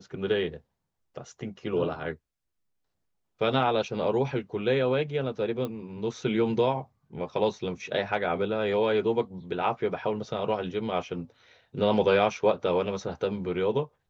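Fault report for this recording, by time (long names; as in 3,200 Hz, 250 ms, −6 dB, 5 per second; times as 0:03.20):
0:05.65: click −21 dBFS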